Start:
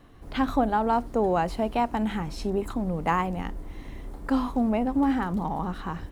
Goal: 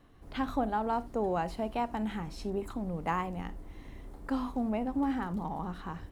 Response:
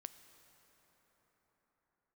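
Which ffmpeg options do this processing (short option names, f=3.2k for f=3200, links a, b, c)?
-filter_complex "[1:a]atrim=start_sample=2205,atrim=end_sample=3528,asetrate=41895,aresample=44100[a];[0:a][a]afir=irnorm=-1:irlink=0,volume=-1.5dB"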